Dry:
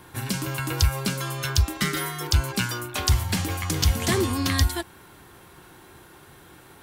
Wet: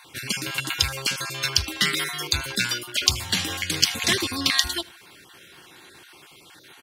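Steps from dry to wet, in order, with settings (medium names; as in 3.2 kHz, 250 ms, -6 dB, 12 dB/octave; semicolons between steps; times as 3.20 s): random holes in the spectrogram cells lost 24%; frequency weighting D; on a send: feedback delay 78 ms, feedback 43%, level -24 dB; on the sum: trim -2 dB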